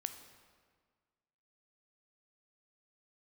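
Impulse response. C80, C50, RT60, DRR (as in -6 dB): 11.0 dB, 9.5 dB, 1.7 s, 8.0 dB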